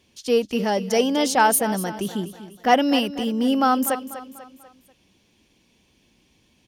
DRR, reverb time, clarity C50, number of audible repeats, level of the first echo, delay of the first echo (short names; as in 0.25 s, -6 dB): none, none, none, 4, -13.5 dB, 0.245 s